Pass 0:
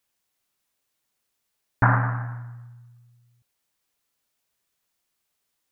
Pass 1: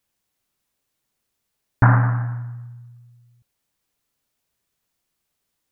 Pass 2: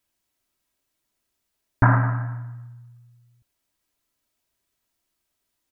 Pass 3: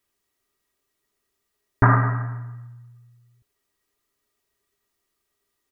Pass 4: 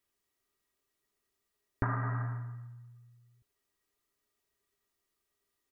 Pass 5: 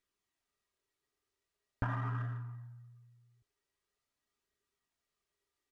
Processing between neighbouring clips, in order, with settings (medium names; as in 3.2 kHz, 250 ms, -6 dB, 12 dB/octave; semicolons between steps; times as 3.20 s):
bass shelf 360 Hz +7.5 dB
comb 3.1 ms, depth 39%; trim -1.5 dB
small resonant body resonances 410/1200/1900 Hz, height 14 dB, ringing for 90 ms
compression 12:1, threshold -22 dBFS, peak gain reduction 12 dB; trim -6 dB
flange 0.44 Hz, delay 0.5 ms, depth 2.1 ms, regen -45%; sliding maximum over 3 samples